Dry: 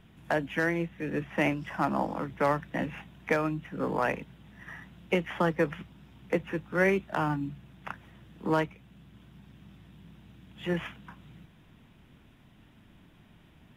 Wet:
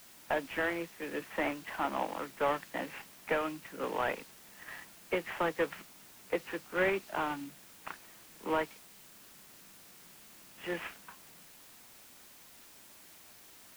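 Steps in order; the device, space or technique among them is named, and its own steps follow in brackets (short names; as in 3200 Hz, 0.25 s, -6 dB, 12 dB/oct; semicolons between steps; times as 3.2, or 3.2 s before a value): army field radio (BPF 380–3400 Hz; CVSD 16 kbps; white noise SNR 18 dB); dynamic EQ 4200 Hz, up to +4 dB, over -53 dBFS, Q 1.3; gain -2 dB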